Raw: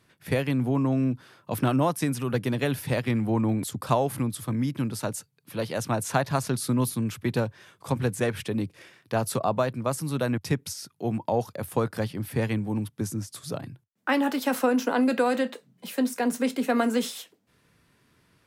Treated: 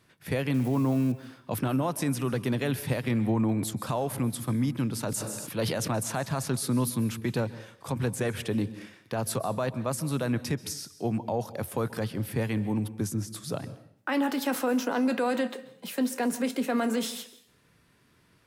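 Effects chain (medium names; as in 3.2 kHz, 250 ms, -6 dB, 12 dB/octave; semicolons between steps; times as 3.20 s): 0.54–1.12 s: zero-crossing glitches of -33 dBFS; peak limiter -19 dBFS, peak gain reduction 10.5 dB; reverberation RT60 0.60 s, pre-delay 123 ms, DRR 15.5 dB; 5.00–5.97 s: decay stretcher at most 24 dB/s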